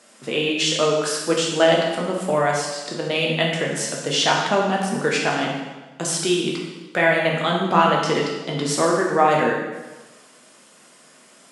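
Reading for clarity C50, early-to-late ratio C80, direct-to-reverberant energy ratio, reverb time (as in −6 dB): 2.0 dB, 4.0 dB, −2.5 dB, 1.2 s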